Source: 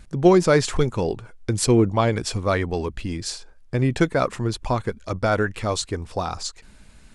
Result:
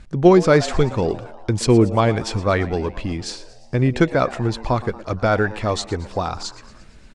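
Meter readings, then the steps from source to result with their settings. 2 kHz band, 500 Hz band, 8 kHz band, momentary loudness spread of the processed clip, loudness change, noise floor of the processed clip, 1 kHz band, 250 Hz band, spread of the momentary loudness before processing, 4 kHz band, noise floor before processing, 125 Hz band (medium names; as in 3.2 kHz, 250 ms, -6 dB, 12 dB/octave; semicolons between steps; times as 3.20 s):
+2.5 dB, +3.0 dB, -3.0 dB, 13 LU, +3.0 dB, -45 dBFS, +3.0 dB, +3.0 dB, 13 LU, +0.5 dB, -49 dBFS, +3.0 dB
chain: distance through air 69 m; on a send: frequency-shifting echo 116 ms, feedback 60%, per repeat +110 Hz, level -18 dB; on the sum: trim +3 dB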